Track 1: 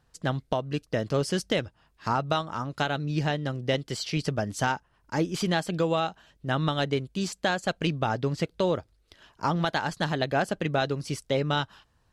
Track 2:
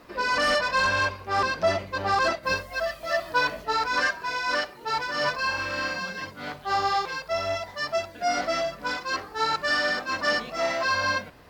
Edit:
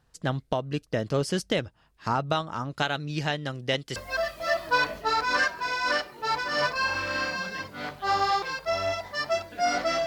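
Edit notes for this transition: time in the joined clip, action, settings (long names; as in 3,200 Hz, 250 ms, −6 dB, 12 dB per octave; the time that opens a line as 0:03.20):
track 1
0:02.82–0:03.96: tilt shelving filter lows −4 dB, about 880 Hz
0:03.96: continue with track 2 from 0:02.59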